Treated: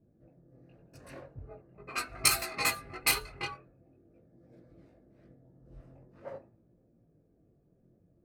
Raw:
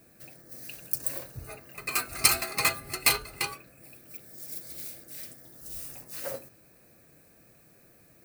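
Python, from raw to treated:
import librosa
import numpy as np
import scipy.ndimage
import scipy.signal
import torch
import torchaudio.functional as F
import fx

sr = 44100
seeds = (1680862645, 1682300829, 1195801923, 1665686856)

y = fx.chorus_voices(x, sr, voices=2, hz=0.44, base_ms=20, depth_ms=3.0, mix_pct=45)
y = fx.env_lowpass(y, sr, base_hz=360.0, full_db=-25.5)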